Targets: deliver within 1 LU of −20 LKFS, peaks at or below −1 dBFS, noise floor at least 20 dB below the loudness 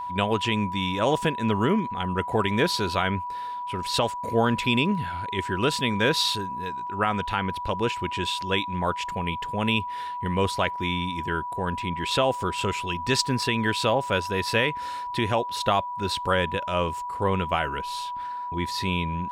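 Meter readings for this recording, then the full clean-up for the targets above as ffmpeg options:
interfering tone 980 Hz; level of the tone −30 dBFS; integrated loudness −26.0 LKFS; sample peak −10.0 dBFS; target loudness −20.0 LKFS
→ -af "bandreject=frequency=980:width=30"
-af "volume=6dB"

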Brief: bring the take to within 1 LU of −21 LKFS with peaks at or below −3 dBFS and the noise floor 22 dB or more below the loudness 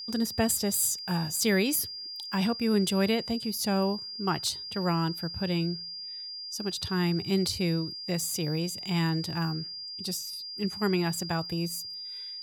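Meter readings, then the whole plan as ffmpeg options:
interfering tone 4,800 Hz; level of the tone −37 dBFS; integrated loudness −29.0 LKFS; sample peak −14.0 dBFS; target loudness −21.0 LKFS
→ -af "bandreject=frequency=4800:width=30"
-af "volume=8dB"

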